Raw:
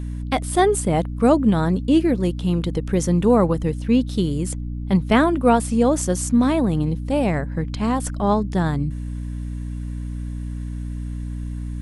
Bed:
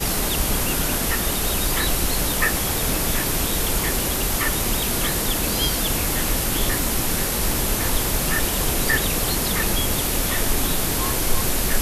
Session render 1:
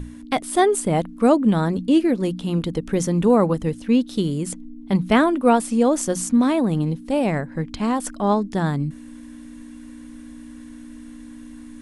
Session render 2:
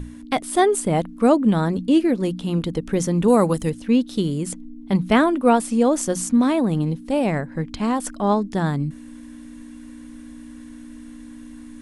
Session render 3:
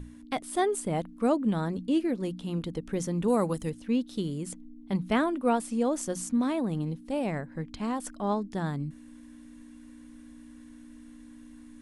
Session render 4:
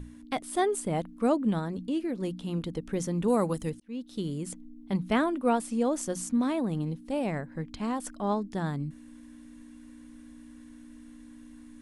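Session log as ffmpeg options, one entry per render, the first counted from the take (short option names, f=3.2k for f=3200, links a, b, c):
-af "bandreject=f=60:t=h:w=6,bandreject=f=120:t=h:w=6,bandreject=f=180:t=h:w=6"
-filter_complex "[0:a]asettb=1/sr,asplit=3[a][b][c];[a]atrim=end=3.284[d];[b]atrim=start=3.28:end=3.7,asetpts=PTS-STARTPTS,afade=t=in:d=0.004:c=qsin,afade=t=out:st=0.416:d=0.004:c=qsin,aemphasis=mode=production:type=75kf[e];[c]atrim=start=3.696[f];[d][e]acrossfade=d=0.004:c1=hsin:c2=qsin[g];[g][f]acrossfade=d=0.004:c1=qsin:c2=hsin"
-af "volume=-9.5dB"
-filter_complex "[0:a]asettb=1/sr,asplit=3[a][b][c];[a]atrim=end=1.594[d];[b]atrim=start=1.59:end=2.16,asetpts=PTS-STARTPTS,afade=t=in:d=0.004:c=qsin,afade=t=out:st=0.566:d=0.004:c=qsin,acompressor=threshold=-33dB:ratio=1.5:attack=3.2:release=140:knee=1:detection=peak[e];[c]atrim=start=2.156[f];[d][e]acrossfade=d=0.004:c1=hsin:c2=qsin[g];[g][f]acrossfade=d=0.004:c1=qsin:c2=hsin,asplit=2[h][i];[h]atrim=end=3.8,asetpts=PTS-STARTPTS,afade=t=out:st=3.796:d=0.004:c=hsin[j];[i]atrim=start=3.8,asetpts=PTS-STARTPTS,afade=t=in:d=0.5[k];[j][k]concat=n=2:v=0:a=1"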